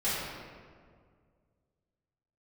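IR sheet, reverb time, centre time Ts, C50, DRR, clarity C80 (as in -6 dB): 2.0 s, 121 ms, -2.5 dB, -13.0 dB, -0.5 dB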